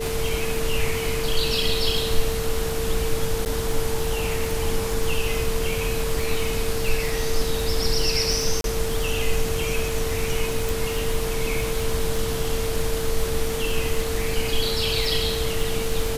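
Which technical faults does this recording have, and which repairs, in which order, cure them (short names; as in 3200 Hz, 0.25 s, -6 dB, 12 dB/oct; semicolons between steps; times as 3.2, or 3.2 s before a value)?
crackle 36/s -26 dBFS
tone 450 Hz -27 dBFS
3.45–3.46 gap 9.3 ms
8.61–8.64 gap 32 ms
10.69 pop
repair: de-click; notch 450 Hz, Q 30; interpolate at 3.45, 9.3 ms; interpolate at 8.61, 32 ms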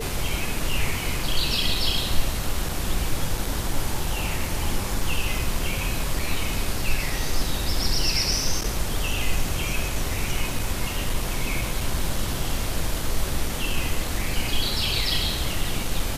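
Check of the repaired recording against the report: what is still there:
none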